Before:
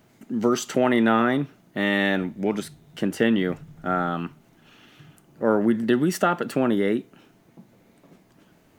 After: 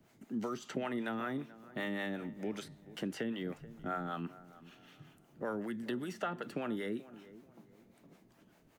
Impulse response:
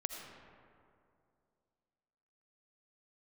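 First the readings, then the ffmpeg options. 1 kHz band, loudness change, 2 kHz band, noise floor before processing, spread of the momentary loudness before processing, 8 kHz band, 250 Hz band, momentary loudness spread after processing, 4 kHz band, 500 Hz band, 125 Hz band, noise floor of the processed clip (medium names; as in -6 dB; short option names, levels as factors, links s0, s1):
-15.5 dB, -16.0 dB, -15.5 dB, -59 dBFS, 12 LU, -18.5 dB, -16.0 dB, 19 LU, -14.5 dB, -16.5 dB, -15.0 dB, -66 dBFS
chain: -filter_complex "[0:a]acrossover=split=190|1700|5600[s0][s1][s2][s3];[s0]acompressor=threshold=0.01:ratio=4[s4];[s1]acompressor=threshold=0.0355:ratio=4[s5];[s2]acompressor=threshold=0.01:ratio=4[s6];[s3]acompressor=threshold=0.00251:ratio=4[s7];[s4][s5][s6][s7]amix=inputs=4:normalize=0,acrossover=split=460[s8][s9];[s8]aeval=exprs='val(0)*(1-0.7/2+0.7/2*cos(2*PI*5.2*n/s))':c=same[s10];[s9]aeval=exprs='val(0)*(1-0.7/2-0.7/2*cos(2*PI*5.2*n/s))':c=same[s11];[s10][s11]amix=inputs=2:normalize=0,asplit=2[s12][s13];[s13]adelay=433,lowpass=f=1500:p=1,volume=0.141,asplit=2[s14][s15];[s15]adelay=433,lowpass=f=1500:p=1,volume=0.36,asplit=2[s16][s17];[s17]adelay=433,lowpass=f=1500:p=1,volume=0.36[s18];[s12][s14][s16][s18]amix=inputs=4:normalize=0,volume=0.562"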